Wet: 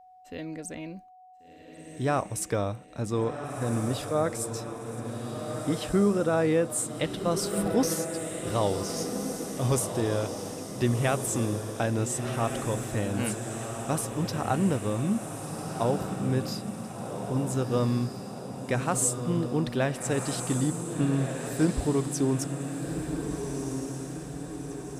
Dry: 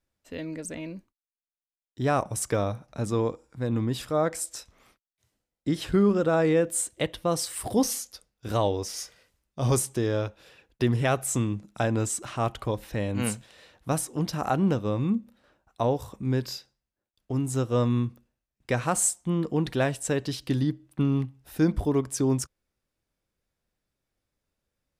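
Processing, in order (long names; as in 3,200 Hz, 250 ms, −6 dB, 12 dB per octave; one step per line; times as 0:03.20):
steady tone 740 Hz −49 dBFS
feedback delay with all-pass diffusion 1,472 ms, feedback 56%, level −6 dB
level −2 dB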